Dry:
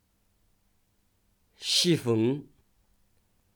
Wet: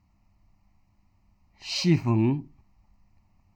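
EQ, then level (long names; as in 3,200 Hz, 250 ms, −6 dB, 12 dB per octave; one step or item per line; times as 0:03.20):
high-shelf EQ 2,600 Hz −9.5 dB
high-shelf EQ 6,300 Hz −10 dB
phaser with its sweep stopped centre 2,300 Hz, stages 8
+8.0 dB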